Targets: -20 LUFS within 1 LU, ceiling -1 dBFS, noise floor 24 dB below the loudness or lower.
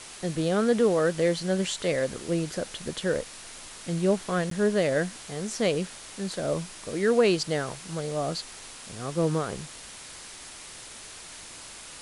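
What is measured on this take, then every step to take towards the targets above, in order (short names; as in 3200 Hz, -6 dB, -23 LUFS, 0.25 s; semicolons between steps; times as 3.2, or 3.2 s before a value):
dropouts 1; longest dropout 13 ms; noise floor -44 dBFS; noise floor target -52 dBFS; loudness -27.5 LUFS; peak -10.0 dBFS; loudness target -20.0 LUFS
-> interpolate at 4.5, 13 ms; noise print and reduce 8 dB; gain +7.5 dB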